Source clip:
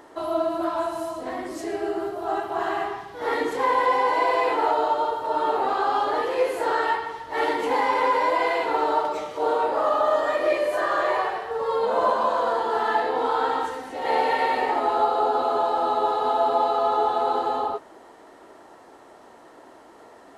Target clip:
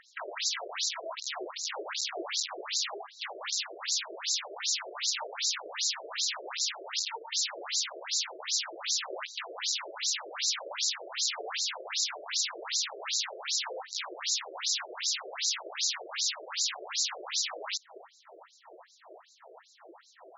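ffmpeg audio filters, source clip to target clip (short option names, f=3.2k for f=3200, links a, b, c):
-af "aeval=exprs='(mod(21.1*val(0)+1,2)-1)/21.1':c=same,bass=f=250:g=15,treble=f=4k:g=12,afftfilt=real='re*between(b*sr/1024,470*pow(5400/470,0.5+0.5*sin(2*PI*2.6*pts/sr))/1.41,470*pow(5400/470,0.5+0.5*sin(2*PI*2.6*pts/sr))*1.41)':imag='im*between(b*sr/1024,470*pow(5400/470,0.5+0.5*sin(2*PI*2.6*pts/sr))/1.41,470*pow(5400/470,0.5+0.5*sin(2*PI*2.6*pts/sr))*1.41)':win_size=1024:overlap=0.75"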